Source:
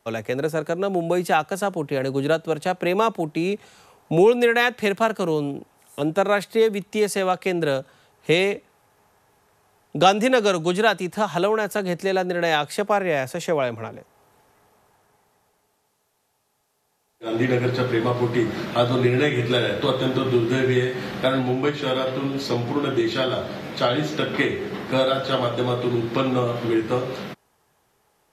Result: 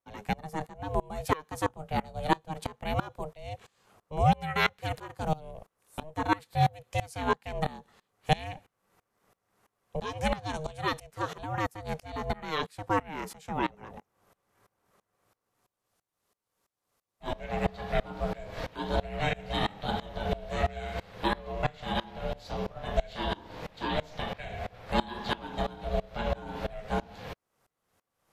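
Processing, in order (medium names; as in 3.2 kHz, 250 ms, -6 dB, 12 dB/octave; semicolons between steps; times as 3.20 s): ring modulator 310 Hz; 1.68–2.46 s: doubling 19 ms -10 dB; sawtooth tremolo in dB swelling 3 Hz, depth 24 dB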